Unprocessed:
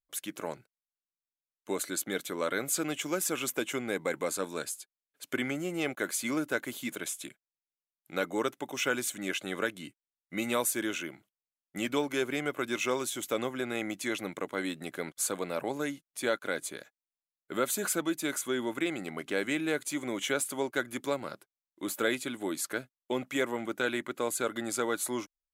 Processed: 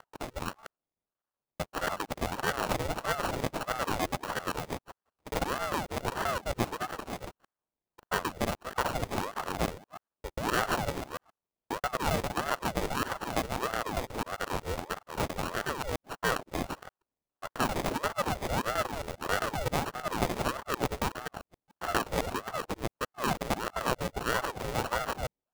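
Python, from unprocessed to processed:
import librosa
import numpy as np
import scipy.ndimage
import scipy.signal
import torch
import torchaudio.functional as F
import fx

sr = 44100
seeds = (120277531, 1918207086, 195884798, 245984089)

y = fx.local_reverse(x, sr, ms=133.0)
y = fx.sample_hold(y, sr, seeds[0], rate_hz=1400.0, jitter_pct=0)
y = fx.ring_lfo(y, sr, carrier_hz=600.0, swing_pct=70, hz=1.6)
y = F.gain(torch.from_numpy(y), 3.5).numpy()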